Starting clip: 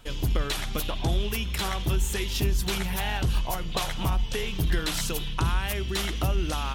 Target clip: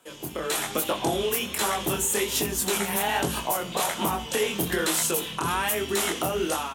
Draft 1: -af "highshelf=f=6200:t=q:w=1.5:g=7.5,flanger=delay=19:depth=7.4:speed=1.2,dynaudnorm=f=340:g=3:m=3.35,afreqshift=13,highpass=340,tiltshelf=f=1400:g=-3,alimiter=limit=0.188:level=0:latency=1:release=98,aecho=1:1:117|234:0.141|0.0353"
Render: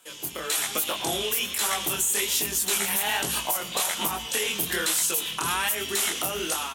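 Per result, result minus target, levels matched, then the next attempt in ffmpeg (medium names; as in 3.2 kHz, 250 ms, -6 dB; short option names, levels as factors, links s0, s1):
echo 54 ms late; 1 kHz band -4.0 dB
-af "highshelf=f=6200:t=q:w=1.5:g=7.5,flanger=delay=19:depth=7.4:speed=1.2,dynaudnorm=f=340:g=3:m=3.35,afreqshift=13,highpass=340,tiltshelf=f=1400:g=-3,alimiter=limit=0.188:level=0:latency=1:release=98,aecho=1:1:63|126:0.141|0.0353"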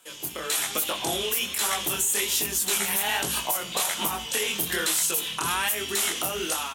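1 kHz band -4.0 dB
-af "highshelf=f=6200:t=q:w=1.5:g=7.5,flanger=delay=19:depth=7.4:speed=1.2,dynaudnorm=f=340:g=3:m=3.35,afreqshift=13,highpass=340,tiltshelf=f=1400:g=3.5,alimiter=limit=0.188:level=0:latency=1:release=98,aecho=1:1:63|126:0.141|0.0353"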